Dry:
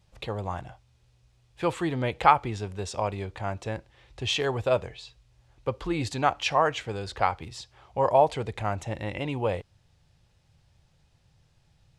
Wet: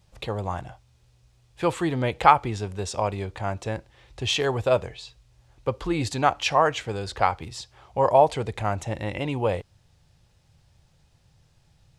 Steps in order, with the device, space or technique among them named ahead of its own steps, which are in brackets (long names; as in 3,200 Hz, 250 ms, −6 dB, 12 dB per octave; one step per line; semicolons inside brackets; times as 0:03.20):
exciter from parts (in parallel at −8 dB: high-pass filter 4,900 Hz 6 dB per octave + soft clipping −24.5 dBFS, distortion −15 dB + high-pass filter 2,200 Hz)
on the sum: level +3 dB